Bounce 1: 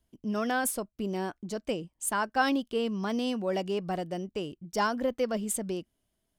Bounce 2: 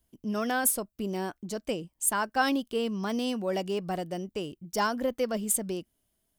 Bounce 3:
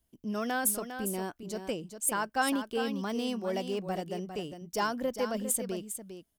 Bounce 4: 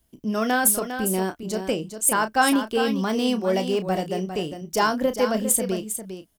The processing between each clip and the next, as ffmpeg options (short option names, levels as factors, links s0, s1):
-af "highshelf=f=9400:g=11.5"
-af "aecho=1:1:403:0.355,volume=0.708"
-filter_complex "[0:a]asplit=2[s0][s1];[s1]adelay=32,volume=0.299[s2];[s0][s2]amix=inputs=2:normalize=0,volume=2.82"